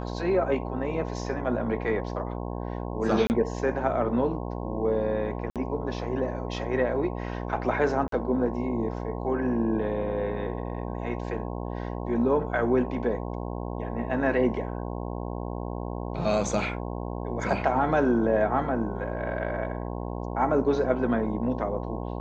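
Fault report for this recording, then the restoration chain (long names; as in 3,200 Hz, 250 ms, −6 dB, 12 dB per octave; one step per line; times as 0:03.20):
mains buzz 60 Hz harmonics 18 −33 dBFS
0:03.27–0:03.30: drop-out 29 ms
0:05.50–0:05.56: drop-out 57 ms
0:08.08–0:08.12: drop-out 43 ms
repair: hum removal 60 Hz, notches 18
repair the gap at 0:03.27, 29 ms
repair the gap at 0:05.50, 57 ms
repair the gap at 0:08.08, 43 ms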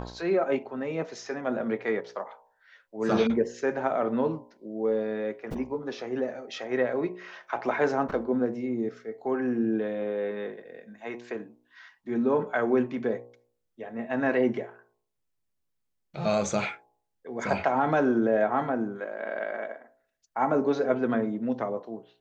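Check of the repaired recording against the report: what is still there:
none of them is left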